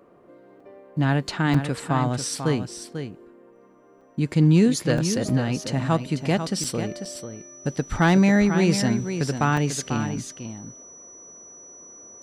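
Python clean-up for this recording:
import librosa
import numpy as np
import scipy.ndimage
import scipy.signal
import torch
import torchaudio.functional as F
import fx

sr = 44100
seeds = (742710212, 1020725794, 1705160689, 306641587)

y = fx.fix_declip(x, sr, threshold_db=-9.5)
y = fx.notch(y, sr, hz=5900.0, q=30.0)
y = fx.fix_interpolate(y, sr, at_s=(0.6, 1.54, 4.01, 4.98, 5.29, 6.64, 7.05, 9.57), length_ms=4.2)
y = fx.fix_echo_inverse(y, sr, delay_ms=493, level_db=-9.0)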